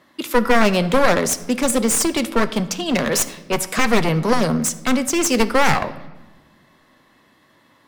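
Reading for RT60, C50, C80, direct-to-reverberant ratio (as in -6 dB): 1.2 s, 15.0 dB, 17.0 dB, 10.5 dB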